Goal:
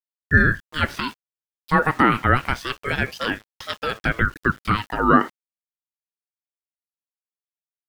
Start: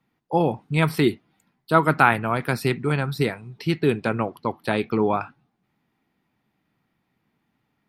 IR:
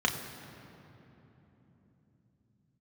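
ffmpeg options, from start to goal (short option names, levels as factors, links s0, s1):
-filter_complex "[0:a]acrossover=split=6200[s0][s1];[s0]alimiter=limit=0.282:level=0:latency=1:release=66[s2];[s1]acompressor=threshold=0.00178:ratio=6[s3];[s2][s3]amix=inputs=2:normalize=0,highpass=f=730:t=q:w=4.4,aeval=exprs='val(0)*gte(abs(val(0)),0.00708)':c=same,aeval=exprs='val(0)*sin(2*PI*720*n/s+720*0.35/0.29*sin(2*PI*0.29*n/s))':c=same,volume=1.68"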